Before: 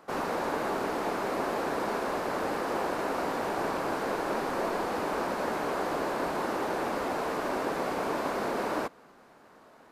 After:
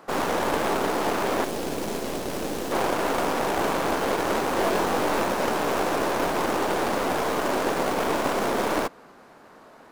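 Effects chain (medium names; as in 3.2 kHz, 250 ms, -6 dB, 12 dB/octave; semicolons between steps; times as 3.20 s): tracing distortion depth 0.26 ms; 1.44–2.72 s: peaking EQ 1.2 kHz -11 dB 2.2 oct; 4.57–5.22 s: doubling 21 ms -6 dB; trim +6 dB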